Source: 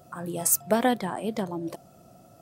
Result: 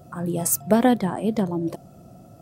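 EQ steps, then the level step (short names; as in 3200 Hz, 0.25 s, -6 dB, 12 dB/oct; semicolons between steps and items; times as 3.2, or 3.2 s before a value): low shelf 430 Hz +10.5 dB; 0.0 dB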